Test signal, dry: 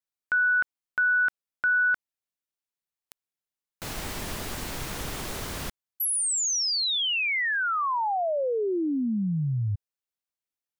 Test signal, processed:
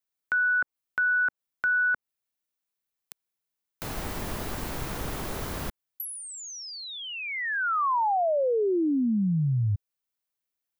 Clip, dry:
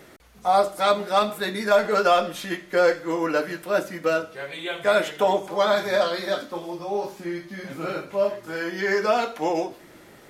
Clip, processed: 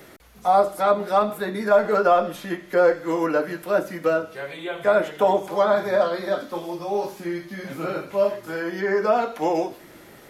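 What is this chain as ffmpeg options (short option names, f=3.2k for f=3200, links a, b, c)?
-filter_complex "[0:a]acrossover=split=300|1600[a][b][c];[c]acompressor=threshold=-41dB:ratio=10:attack=7.5:release=309:detection=peak[d];[a][b][d]amix=inputs=3:normalize=0,aexciter=amount=1.7:drive=2.8:freq=11k,volume=2dB"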